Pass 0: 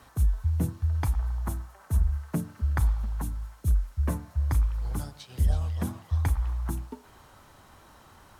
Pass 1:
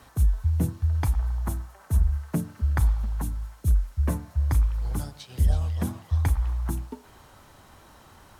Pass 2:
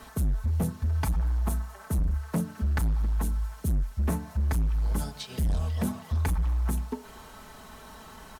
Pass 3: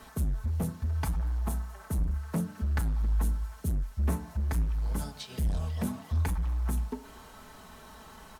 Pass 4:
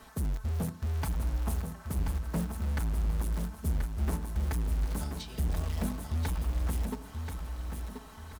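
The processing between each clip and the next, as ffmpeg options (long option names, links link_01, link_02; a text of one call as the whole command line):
ffmpeg -i in.wav -af "equalizer=frequency=1200:width=1.5:gain=-2,volume=2.5dB" out.wav
ffmpeg -i in.wav -filter_complex "[0:a]aecho=1:1:4.6:0.71,asplit=2[link_01][link_02];[link_02]acompressor=threshold=-33dB:ratio=6,volume=-2dB[link_03];[link_01][link_03]amix=inputs=2:normalize=0,volume=21dB,asoftclip=hard,volume=-21dB,volume=-1.5dB" out.wav
ffmpeg -i in.wav -af "flanger=delay=9.9:depth=9.7:regen=80:speed=0.79:shape=triangular,volume=1.5dB" out.wav
ffmpeg -i in.wav -filter_complex "[0:a]asplit=2[link_01][link_02];[link_02]acrusher=bits=4:mix=0:aa=0.000001,volume=-5.5dB[link_03];[link_01][link_03]amix=inputs=2:normalize=0,asoftclip=type=hard:threshold=-25.5dB,aecho=1:1:1032|2064|3096|4128:0.473|0.156|0.0515|0.017,volume=-2.5dB" out.wav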